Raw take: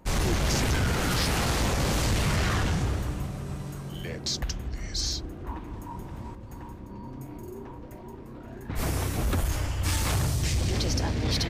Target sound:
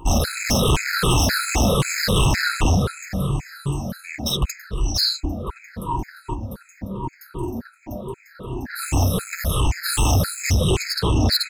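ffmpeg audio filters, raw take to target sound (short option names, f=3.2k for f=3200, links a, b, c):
-af "afftfilt=real='re*pow(10,20/40*sin(2*PI*(0.67*log(max(b,1)*sr/1024/100)/log(2)-(-2.7)*(pts-256)/sr)))':imag='im*pow(10,20/40*sin(2*PI*(0.67*log(max(b,1)*sr/1024/100)/log(2)-(-2.7)*(pts-256)/sr)))':win_size=1024:overlap=0.75,aeval=exprs='0.316*(cos(1*acos(clip(val(0)/0.316,-1,1)))-cos(1*PI/2))+0.112*(cos(5*acos(clip(val(0)/0.316,-1,1)))-cos(5*PI/2))+0.0631*(cos(6*acos(clip(val(0)/0.316,-1,1)))-cos(6*PI/2))+0.00251*(cos(7*acos(clip(val(0)/0.316,-1,1)))-cos(7*PI/2))+0.0562*(cos(8*acos(clip(val(0)/0.316,-1,1)))-cos(8*PI/2))':c=same,afftfilt=real='re*gt(sin(2*PI*1.9*pts/sr)*(1-2*mod(floor(b*sr/1024/1300),2)),0)':imag='im*gt(sin(2*PI*1.9*pts/sr)*(1-2*mod(floor(b*sr/1024/1300),2)),0)':win_size=1024:overlap=0.75"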